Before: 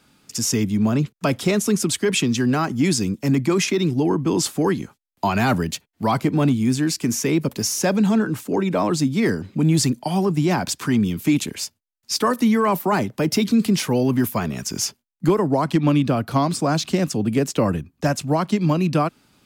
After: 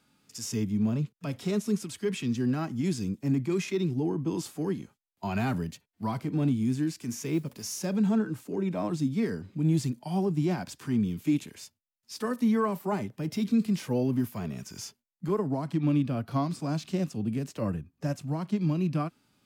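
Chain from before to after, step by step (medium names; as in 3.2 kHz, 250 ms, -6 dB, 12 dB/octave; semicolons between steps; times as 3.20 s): harmonic-percussive split percussive -12 dB; 7.10–7.86 s: modulation noise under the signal 32 dB; trim -7 dB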